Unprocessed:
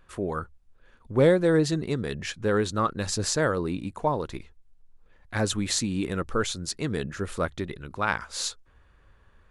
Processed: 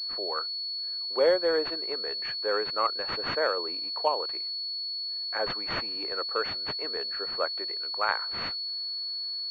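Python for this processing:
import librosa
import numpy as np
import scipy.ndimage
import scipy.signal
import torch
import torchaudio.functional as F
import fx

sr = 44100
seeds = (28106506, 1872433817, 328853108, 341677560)

y = scipy.signal.sosfilt(scipy.signal.butter(4, 470.0, 'highpass', fs=sr, output='sos'), x)
y = fx.pwm(y, sr, carrier_hz=4400.0)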